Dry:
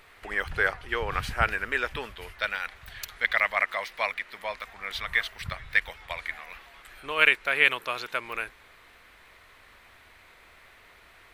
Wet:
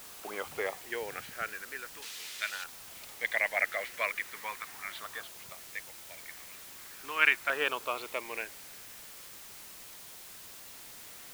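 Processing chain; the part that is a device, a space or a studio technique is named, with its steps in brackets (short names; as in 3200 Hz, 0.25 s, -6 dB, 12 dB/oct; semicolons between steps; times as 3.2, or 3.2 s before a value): shortwave radio (BPF 260–2600 Hz; tremolo 0.25 Hz, depth 80%; LFO notch saw down 0.4 Hz 440–2300 Hz; white noise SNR 11 dB); 2.02–2.64 weighting filter D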